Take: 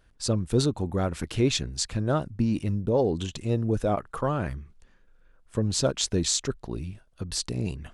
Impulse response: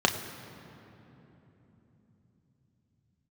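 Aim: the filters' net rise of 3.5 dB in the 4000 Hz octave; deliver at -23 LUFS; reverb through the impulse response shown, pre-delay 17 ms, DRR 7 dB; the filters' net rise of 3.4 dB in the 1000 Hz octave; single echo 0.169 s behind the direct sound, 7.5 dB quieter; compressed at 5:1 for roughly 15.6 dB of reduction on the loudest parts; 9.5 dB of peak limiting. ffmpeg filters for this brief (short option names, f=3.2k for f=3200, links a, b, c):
-filter_complex "[0:a]equalizer=f=1k:t=o:g=4.5,equalizer=f=4k:t=o:g=4,acompressor=threshold=-36dB:ratio=5,alimiter=level_in=5dB:limit=-24dB:level=0:latency=1,volume=-5dB,aecho=1:1:169:0.422,asplit=2[a][b];[1:a]atrim=start_sample=2205,adelay=17[c];[b][c]afir=irnorm=-1:irlink=0,volume=-21dB[d];[a][d]amix=inputs=2:normalize=0,volume=16dB"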